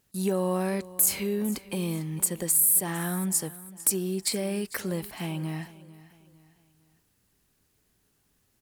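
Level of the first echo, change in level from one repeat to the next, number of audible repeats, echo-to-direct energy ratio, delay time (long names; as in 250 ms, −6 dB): −18.0 dB, −8.0 dB, 3, −17.5 dB, 452 ms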